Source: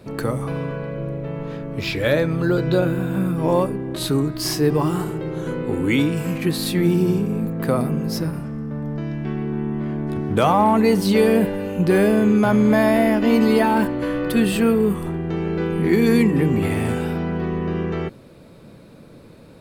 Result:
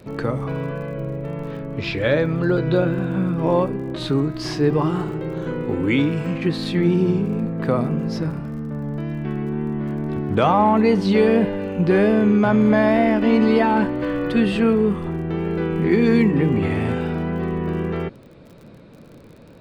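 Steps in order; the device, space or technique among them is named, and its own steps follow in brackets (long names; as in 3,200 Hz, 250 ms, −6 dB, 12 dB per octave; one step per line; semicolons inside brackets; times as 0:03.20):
lo-fi chain (low-pass filter 3,900 Hz 12 dB per octave; tape wow and flutter 27 cents; surface crackle 41 per second −38 dBFS)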